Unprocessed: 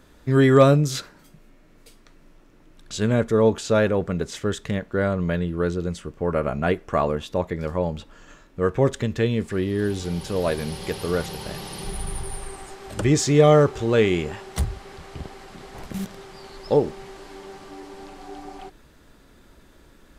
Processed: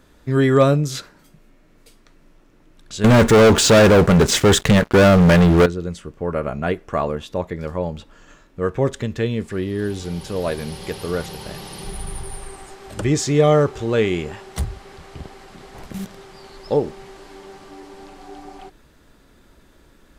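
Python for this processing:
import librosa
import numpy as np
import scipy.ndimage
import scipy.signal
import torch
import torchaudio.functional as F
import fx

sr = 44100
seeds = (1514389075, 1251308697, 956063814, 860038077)

y = fx.leveller(x, sr, passes=5, at=(3.04, 5.66))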